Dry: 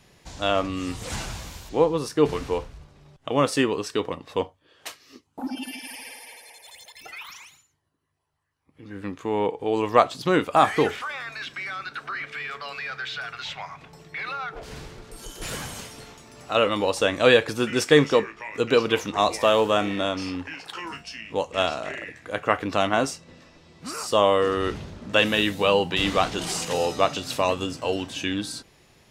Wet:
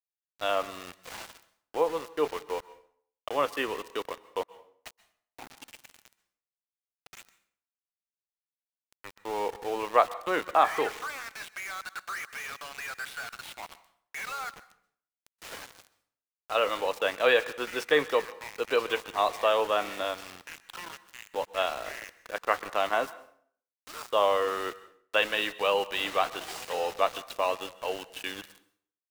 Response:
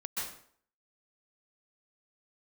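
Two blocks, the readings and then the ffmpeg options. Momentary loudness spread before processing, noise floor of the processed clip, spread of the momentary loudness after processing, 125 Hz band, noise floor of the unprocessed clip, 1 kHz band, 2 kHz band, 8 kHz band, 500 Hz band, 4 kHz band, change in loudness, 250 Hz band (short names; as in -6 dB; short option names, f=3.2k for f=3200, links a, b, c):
19 LU, under -85 dBFS, 18 LU, -21.5 dB, -62 dBFS, -4.0 dB, -4.5 dB, -9.0 dB, -6.5 dB, -7.0 dB, -5.5 dB, -15.0 dB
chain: -filter_complex "[0:a]acrossover=split=410 3500:gain=0.1 1 0.251[a][b][c];[a][b][c]amix=inputs=3:normalize=0,aeval=exprs='val(0)*gte(abs(val(0)),0.02)':c=same,asplit=2[d][e];[1:a]atrim=start_sample=2205[f];[e][f]afir=irnorm=-1:irlink=0,volume=-19dB[g];[d][g]amix=inputs=2:normalize=0,volume=-4dB"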